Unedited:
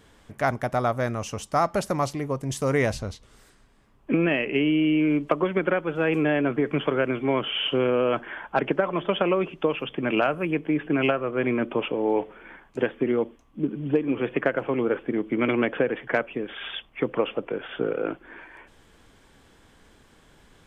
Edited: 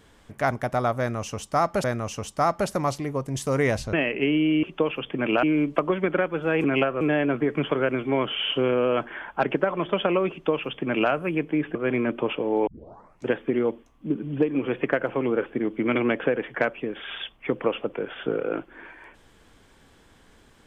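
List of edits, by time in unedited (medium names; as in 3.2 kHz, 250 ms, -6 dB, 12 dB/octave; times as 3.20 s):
0.99–1.84 s: loop, 2 plays
3.08–4.26 s: delete
9.47–10.27 s: copy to 4.96 s
10.91–11.28 s: move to 6.17 s
12.20 s: tape start 0.60 s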